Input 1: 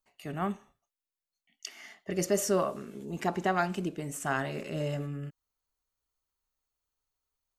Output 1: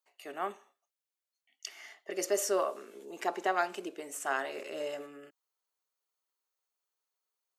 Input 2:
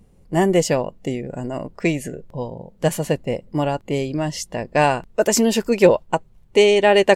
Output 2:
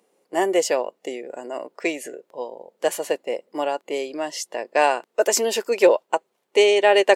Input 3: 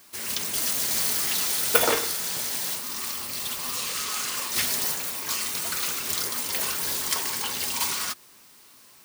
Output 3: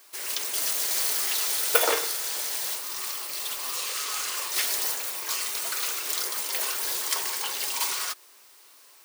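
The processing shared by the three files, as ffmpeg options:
-af "highpass=f=360:w=0.5412,highpass=f=360:w=1.3066,volume=-1dB"

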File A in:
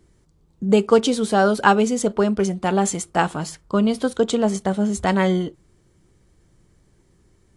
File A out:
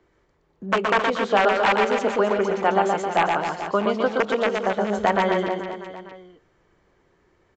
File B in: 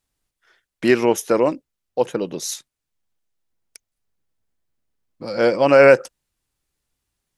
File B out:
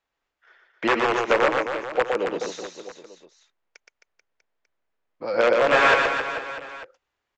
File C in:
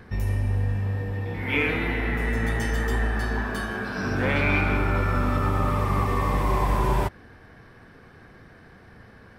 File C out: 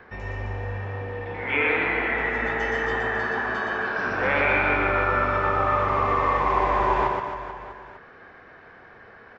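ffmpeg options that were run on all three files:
-filter_complex "[0:a]aresample=16000,aeval=exprs='(mod(2.66*val(0)+1,2)-1)/2.66':c=same,aresample=44100,acrossover=split=400 2900:gain=0.158 1 0.158[a][b][c];[a][b][c]amix=inputs=3:normalize=0,alimiter=limit=-12.5dB:level=0:latency=1:release=397,acrossover=split=3200[d][e];[e]acompressor=threshold=-41dB:ratio=4:attack=1:release=60[f];[d][f]amix=inputs=2:normalize=0,aecho=1:1:120|264|436.8|644.2|893:0.631|0.398|0.251|0.158|0.1,volume=4dB"

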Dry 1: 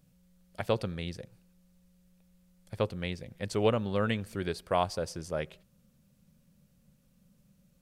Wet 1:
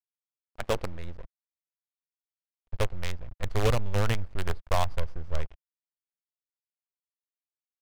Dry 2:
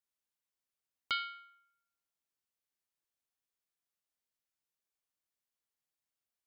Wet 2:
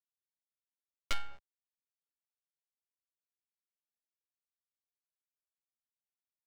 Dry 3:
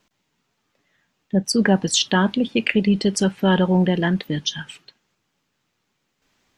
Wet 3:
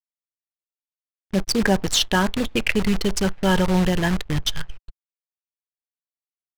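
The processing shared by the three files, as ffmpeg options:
-af "acrusher=bits=5:dc=4:mix=0:aa=0.000001,asubboost=boost=10.5:cutoff=75,adynamicsmooth=sensitivity=6:basefreq=1.5k"

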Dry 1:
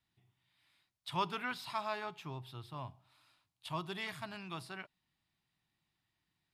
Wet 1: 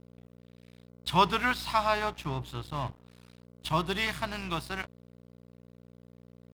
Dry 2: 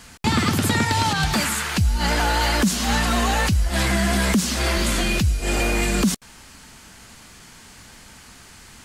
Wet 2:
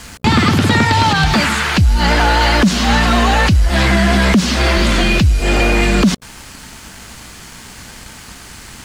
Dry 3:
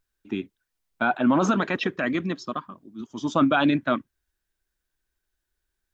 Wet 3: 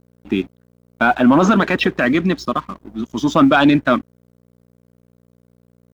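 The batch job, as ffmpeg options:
-filter_complex "[0:a]acrossover=split=5300[a][b];[b]acompressor=threshold=-45dB:ratio=4:attack=1:release=60[c];[a][c]amix=inputs=2:normalize=0,asplit=2[d][e];[e]alimiter=limit=-21.5dB:level=0:latency=1:release=98,volume=-2dB[f];[d][f]amix=inputs=2:normalize=0,acontrast=89,aeval=exprs='val(0)+0.00794*(sin(2*PI*60*n/s)+sin(2*PI*2*60*n/s)/2+sin(2*PI*3*60*n/s)/3+sin(2*PI*4*60*n/s)/4+sin(2*PI*5*60*n/s)/5)':c=same,aeval=exprs='sgn(val(0))*max(abs(val(0))-0.00794,0)':c=same"

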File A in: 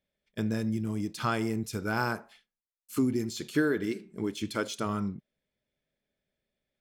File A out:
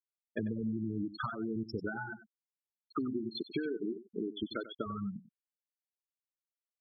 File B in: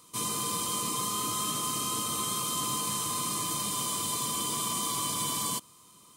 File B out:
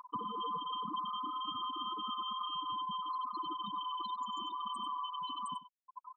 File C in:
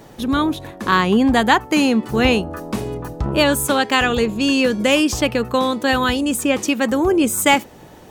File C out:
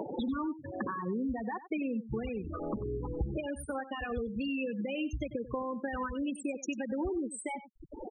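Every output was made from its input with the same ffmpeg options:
-filter_complex "[0:a]acrossover=split=230|5300[a][b][c];[b]acompressor=mode=upward:threshold=-24dB:ratio=2.5[d];[a][d][c]amix=inputs=3:normalize=0,alimiter=limit=-11.5dB:level=0:latency=1:release=143,acompressor=threshold=-30dB:ratio=12,asubboost=boost=3:cutoff=67,afftfilt=real='re*gte(hypot(re,im),0.0631)':imag='im*gte(hypot(re,im),0.0631)':win_size=1024:overlap=0.75,asplit=2[e][f];[f]aecho=0:1:94:0.178[g];[e][g]amix=inputs=2:normalize=0"

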